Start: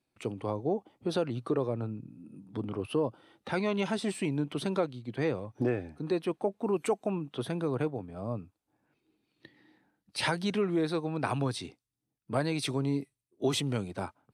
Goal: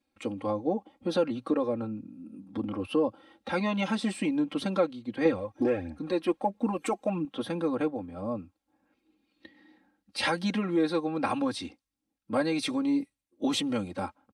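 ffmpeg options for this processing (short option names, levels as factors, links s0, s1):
-filter_complex "[0:a]asettb=1/sr,asplit=3[s0][s1][s2];[s0]atrim=end=5.254[s3];[s1]atrim=start=5.25:end=7.25,asetpts=PTS-STARTPTS,afade=t=in:d=0.004:c=qsin,afade=t=out:st=1.996:d=0.004:c=qsin,aphaser=in_gain=1:out_gain=1:delay=3.2:decay=0.49:speed=1.5:type=triangular[s4];[s2]atrim=start=7.246[s5];[s3][s4]acrossfade=d=0.004:c1=hsin:c2=qsin[s6];[s6][s5]acrossfade=d=0.004:c1=qsin:c2=hsin,highshelf=f=9400:g=-9.5,aecho=1:1:3.7:0.99"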